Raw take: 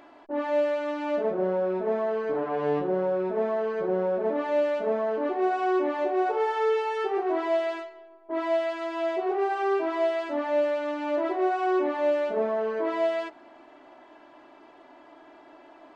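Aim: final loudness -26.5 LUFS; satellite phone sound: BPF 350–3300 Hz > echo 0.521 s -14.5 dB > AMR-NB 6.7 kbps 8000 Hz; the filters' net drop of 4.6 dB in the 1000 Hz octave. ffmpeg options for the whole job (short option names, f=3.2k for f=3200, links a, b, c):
-af "highpass=350,lowpass=3.3k,equalizer=f=1k:t=o:g=-6.5,aecho=1:1:521:0.188,volume=4dB" -ar 8000 -c:a libopencore_amrnb -b:a 6700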